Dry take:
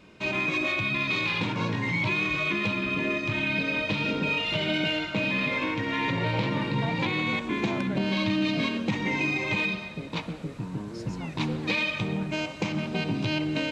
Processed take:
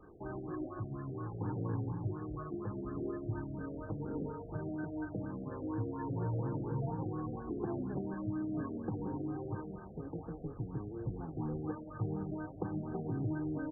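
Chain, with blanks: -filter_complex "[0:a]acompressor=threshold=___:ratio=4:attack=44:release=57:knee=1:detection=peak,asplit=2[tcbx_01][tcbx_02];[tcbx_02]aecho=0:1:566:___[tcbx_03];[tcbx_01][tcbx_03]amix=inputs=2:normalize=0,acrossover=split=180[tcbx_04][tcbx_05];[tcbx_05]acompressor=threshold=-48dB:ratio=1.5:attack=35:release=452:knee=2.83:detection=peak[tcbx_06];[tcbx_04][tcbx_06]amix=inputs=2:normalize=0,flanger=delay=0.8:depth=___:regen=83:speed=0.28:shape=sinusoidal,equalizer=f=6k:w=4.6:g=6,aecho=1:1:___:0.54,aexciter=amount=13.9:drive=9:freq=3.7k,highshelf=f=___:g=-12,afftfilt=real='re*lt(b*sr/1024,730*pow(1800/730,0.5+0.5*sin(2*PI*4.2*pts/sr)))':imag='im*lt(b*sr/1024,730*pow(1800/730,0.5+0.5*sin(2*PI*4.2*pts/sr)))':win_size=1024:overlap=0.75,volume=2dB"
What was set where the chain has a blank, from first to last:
-29dB, 0.0794, 9.8, 2.5, 4.5k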